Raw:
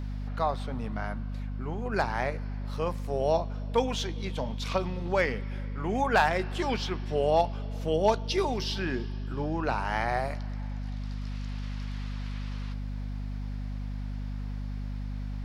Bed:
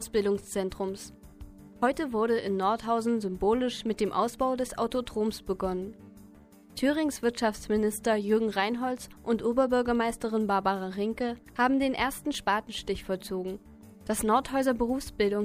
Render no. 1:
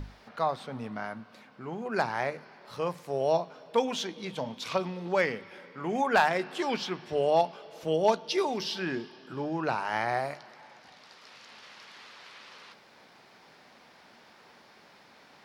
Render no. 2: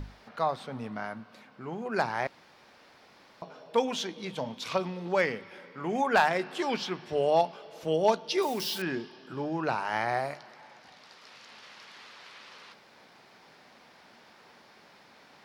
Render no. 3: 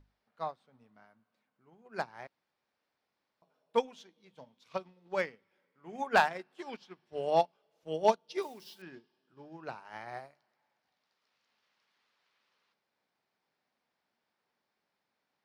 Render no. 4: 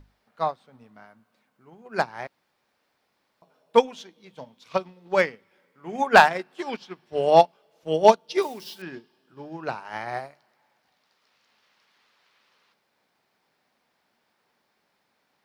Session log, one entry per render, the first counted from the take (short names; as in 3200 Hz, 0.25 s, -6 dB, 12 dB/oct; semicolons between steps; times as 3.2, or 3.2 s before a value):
notches 50/100/150/200/250 Hz
2.27–3.42 room tone; 8.42–8.82 switching spikes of -33 dBFS
upward expander 2.5:1, over -38 dBFS
gain +11.5 dB; limiter -3 dBFS, peak gain reduction 1 dB